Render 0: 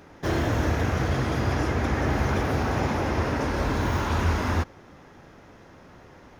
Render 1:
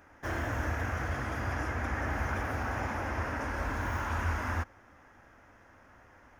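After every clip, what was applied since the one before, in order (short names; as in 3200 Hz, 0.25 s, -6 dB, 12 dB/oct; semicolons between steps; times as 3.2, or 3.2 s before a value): fifteen-band EQ 160 Hz -12 dB, 400 Hz -8 dB, 1600 Hz +5 dB, 4000 Hz -11 dB; gain -6.5 dB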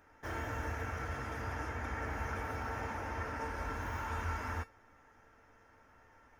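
resonator 450 Hz, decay 0.17 s, harmonics all, mix 80%; gain +5.5 dB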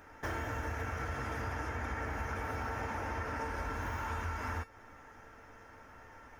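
compressor, threshold -43 dBFS, peak gain reduction 10.5 dB; gain +8.5 dB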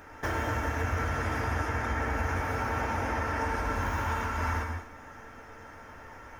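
reverb, pre-delay 93 ms, DRR 5 dB; gain +6 dB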